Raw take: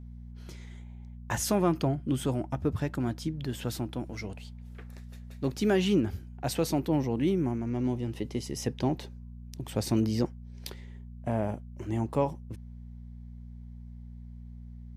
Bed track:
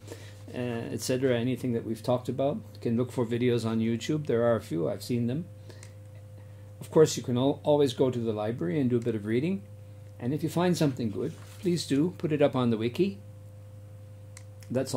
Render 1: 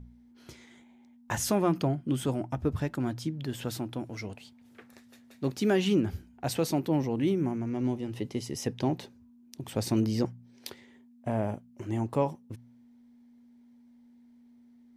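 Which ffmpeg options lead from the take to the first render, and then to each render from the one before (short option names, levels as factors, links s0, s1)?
-af "bandreject=f=60:t=h:w=4,bandreject=f=120:t=h:w=4,bandreject=f=180:t=h:w=4"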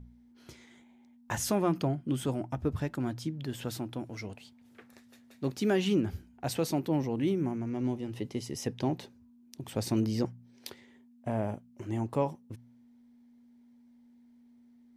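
-af "volume=0.794"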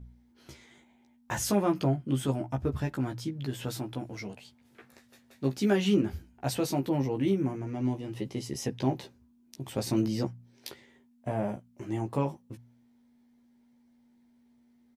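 -filter_complex "[0:a]asplit=2[s0][s1];[s1]adelay=15,volume=0.668[s2];[s0][s2]amix=inputs=2:normalize=0"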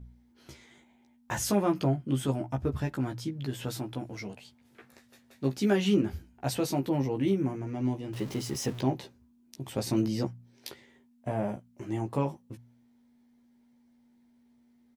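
-filter_complex "[0:a]asettb=1/sr,asplit=3[s0][s1][s2];[s0]atrim=end=8.134[s3];[s1]atrim=start=8.13:end=8.81,asetpts=PTS-STARTPTS,afade=t=in:d=0.004:c=qsin,afade=t=out:st=0.676:d=0.004:c=qsin,aeval=exprs='val(0)+0.5*0.0112*sgn(val(0))':c=same[s4];[s2]atrim=start=8.806[s5];[s3][s4]acrossfade=d=0.004:c1=hsin:c2=qsin[s6];[s6][s5]acrossfade=d=0.004:c1=qsin:c2=hsin"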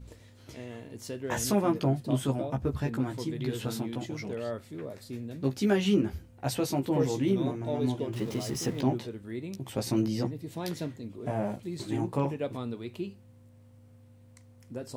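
-filter_complex "[1:a]volume=0.316[s0];[0:a][s0]amix=inputs=2:normalize=0"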